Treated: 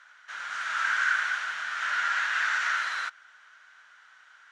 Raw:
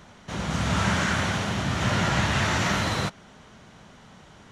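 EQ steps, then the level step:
high-pass with resonance 1,500 Hz, resonance Q 5.6
low-pass filter 8,500 Hz 12 dB per octave
−8.5 dB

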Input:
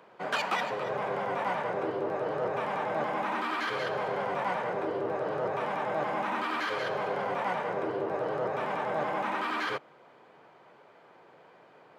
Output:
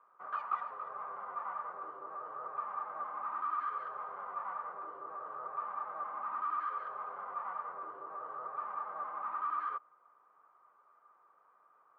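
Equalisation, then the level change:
resonant band-pass 1,200 Hz, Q 15
spectral tilt −2.5 dB per octave
+5.0 dB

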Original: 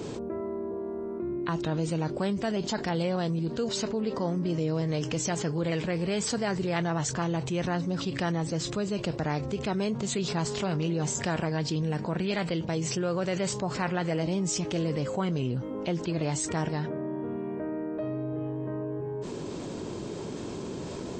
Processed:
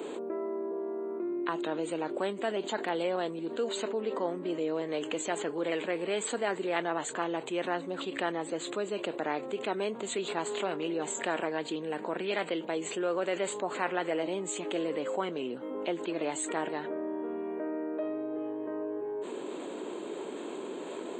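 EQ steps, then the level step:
high-pass filter 290 Hz 24 dB per octave
Butterworth band-reject 5,400 Hz, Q 1.5
0.0 dB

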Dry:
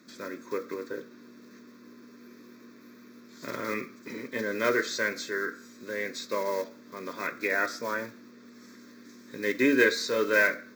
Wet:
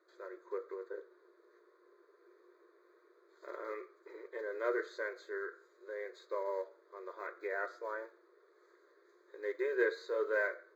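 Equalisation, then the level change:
moving average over 16 samples
linear-phase brick-wall high-pass 330 Hz
−6.5 dB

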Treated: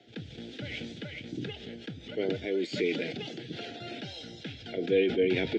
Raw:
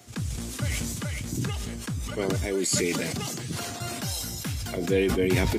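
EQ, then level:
dynamic equaliser 2,400 Hz, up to +4 dB, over −48 dBFS, Q 4.8
Butterworth band-reject 1,100 Hz, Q 1.6
loudspeaker in its box 160–4,000 Hz, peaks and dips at 320 Hz +6 dB, 460 Hz +7 dB, 1,300 Hz +3 dB, 3,400 Hz +8 dB
−6.5 dB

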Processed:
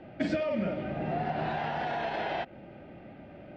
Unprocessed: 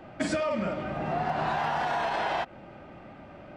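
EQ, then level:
high-frequency loss of the air 220 metres
low-shelf EQ 64 Hz −7.5 dB
parametric band 1,100 Hz −12.5 dB 0.74 octaves
+1.5 dB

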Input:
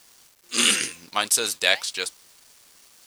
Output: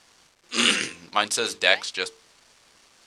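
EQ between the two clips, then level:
low-pass filter 8,000 Hz 12 dB per octave
high-shelf EQ 4,300 Hz −8.5 dB
mains-hum notches 50/100/150/200/250/300/350/400/450 Hz
+3.0 dB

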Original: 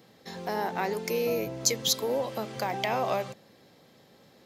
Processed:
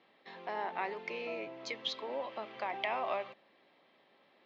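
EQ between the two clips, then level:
loudspeaker in its box 480–3,100 Hz, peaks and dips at 480 Hz −9 dB, 780 Hz −4 dB, 1,500 Hz −6 dB
−2.0 dB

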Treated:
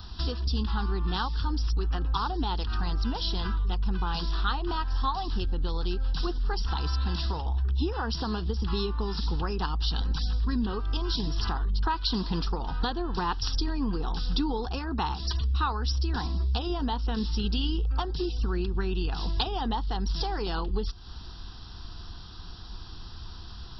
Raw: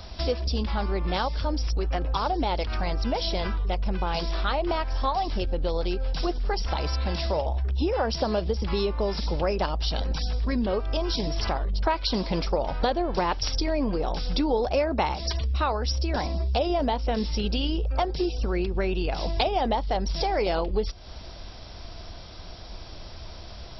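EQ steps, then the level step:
phaser with its sweep stopped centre 2,200 Hz, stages 6
0.0 dB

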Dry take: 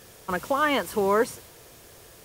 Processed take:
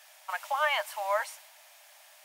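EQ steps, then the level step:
Chebyshev high-pass with heavy ripple 590 Hz, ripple 6 dB
0.0 dB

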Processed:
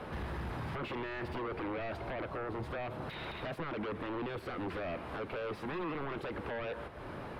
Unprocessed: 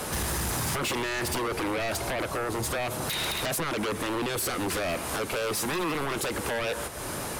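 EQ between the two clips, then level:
high-frequency loss of the air 420 metres
−7.0 dB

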